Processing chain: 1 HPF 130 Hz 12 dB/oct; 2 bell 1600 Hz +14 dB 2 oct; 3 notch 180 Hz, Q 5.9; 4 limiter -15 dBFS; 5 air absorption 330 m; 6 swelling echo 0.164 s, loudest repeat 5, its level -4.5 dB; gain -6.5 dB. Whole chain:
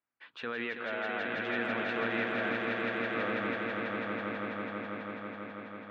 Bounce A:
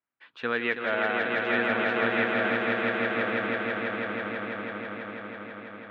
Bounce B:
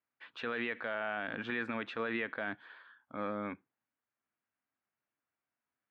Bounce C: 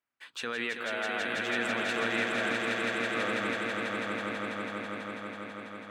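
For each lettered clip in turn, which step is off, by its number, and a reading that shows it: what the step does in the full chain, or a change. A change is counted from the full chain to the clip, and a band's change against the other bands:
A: 4, mean gain reduction 3.0 dB; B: 6, momentary loudness spread change +3 LU; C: 5, 4 kHz band +6.5 dB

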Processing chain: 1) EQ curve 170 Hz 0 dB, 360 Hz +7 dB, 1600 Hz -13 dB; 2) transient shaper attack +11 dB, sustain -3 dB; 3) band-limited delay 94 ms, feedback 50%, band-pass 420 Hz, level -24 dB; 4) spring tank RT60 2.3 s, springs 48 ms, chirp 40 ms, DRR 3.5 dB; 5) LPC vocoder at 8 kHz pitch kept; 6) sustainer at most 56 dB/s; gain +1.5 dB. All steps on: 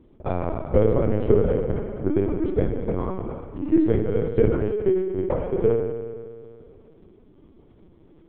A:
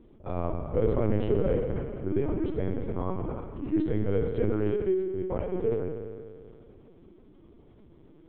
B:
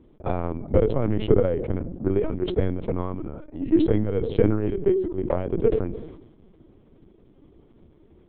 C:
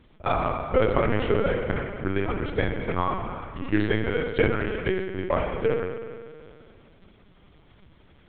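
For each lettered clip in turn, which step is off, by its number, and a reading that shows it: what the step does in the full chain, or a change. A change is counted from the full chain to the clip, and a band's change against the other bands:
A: 2, momentary loudness spread change -2 LU; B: 4, momentary loudness spread change -2 LU; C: 1, 2 kHz band +17.0 dB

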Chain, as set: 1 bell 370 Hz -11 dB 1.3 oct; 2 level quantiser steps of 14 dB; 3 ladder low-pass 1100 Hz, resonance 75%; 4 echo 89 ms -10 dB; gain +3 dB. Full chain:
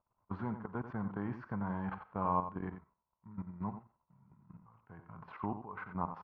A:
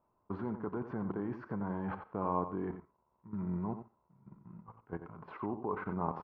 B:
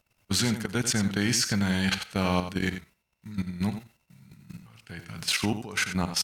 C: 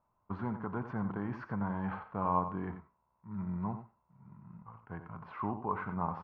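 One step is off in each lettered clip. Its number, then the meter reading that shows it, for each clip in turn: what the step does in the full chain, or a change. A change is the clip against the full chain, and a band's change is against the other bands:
1, 500 Hz band +5.5 dB; 3, 1 kHz band -10.0 dB; 2, momentary loudness spread change -3 LU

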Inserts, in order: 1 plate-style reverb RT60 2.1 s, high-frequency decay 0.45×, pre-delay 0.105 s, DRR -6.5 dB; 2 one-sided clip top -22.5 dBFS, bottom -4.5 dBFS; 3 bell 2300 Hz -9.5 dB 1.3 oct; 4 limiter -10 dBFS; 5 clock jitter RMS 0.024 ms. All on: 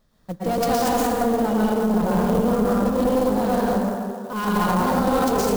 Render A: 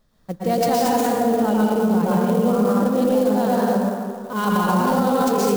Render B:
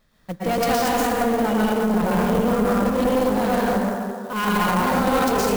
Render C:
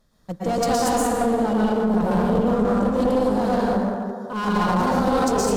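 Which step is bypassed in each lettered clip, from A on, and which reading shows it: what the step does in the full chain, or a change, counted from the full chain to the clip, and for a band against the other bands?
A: 2, distortion -7 dB; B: 3, 2 kHz band +4.5 dB; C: 5, 8 kHz band +2.0 dB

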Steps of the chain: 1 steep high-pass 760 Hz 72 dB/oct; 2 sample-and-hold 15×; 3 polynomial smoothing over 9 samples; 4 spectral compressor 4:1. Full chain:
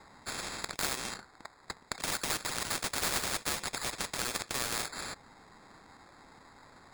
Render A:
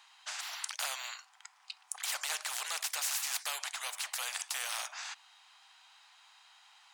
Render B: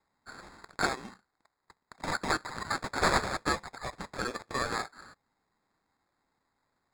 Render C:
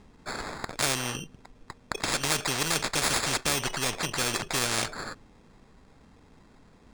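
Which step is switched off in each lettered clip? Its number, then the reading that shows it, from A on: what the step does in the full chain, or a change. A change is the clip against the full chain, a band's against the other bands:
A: 2, crest factor change +2.0 dB; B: 4, 8 kHz band -13.5 dB; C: 1, 125 Hz band +4.5 dB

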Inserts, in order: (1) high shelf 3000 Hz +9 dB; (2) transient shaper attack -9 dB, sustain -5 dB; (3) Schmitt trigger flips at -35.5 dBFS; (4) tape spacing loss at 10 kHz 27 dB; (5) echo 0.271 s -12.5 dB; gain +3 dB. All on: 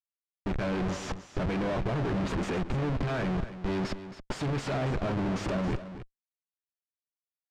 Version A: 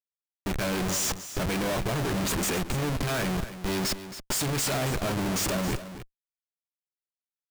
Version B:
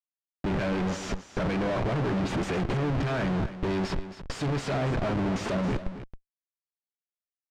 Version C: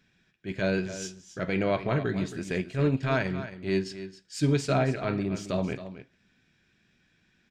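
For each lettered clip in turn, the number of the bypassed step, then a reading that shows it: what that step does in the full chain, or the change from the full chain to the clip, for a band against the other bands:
4, 8 kHz band +17.0 dB; 2, loudness change +2.5 LU; 3, crest factor change +6.5 dB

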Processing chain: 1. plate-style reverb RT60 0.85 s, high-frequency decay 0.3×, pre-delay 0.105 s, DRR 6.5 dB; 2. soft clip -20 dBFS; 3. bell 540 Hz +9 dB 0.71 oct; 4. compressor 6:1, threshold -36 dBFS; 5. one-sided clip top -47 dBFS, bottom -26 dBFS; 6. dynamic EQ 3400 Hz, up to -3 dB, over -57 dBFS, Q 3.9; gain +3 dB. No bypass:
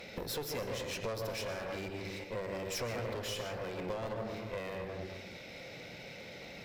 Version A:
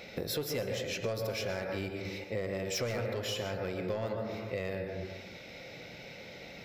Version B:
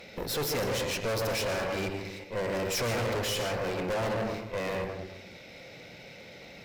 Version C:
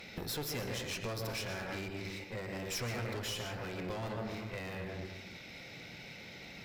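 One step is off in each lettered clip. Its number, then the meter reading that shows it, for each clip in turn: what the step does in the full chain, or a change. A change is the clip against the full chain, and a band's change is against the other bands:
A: 5, distortion -7 dB; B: 4, mean gain reduction 7.5 dB; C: 3, 500 Hz band -5.5 dB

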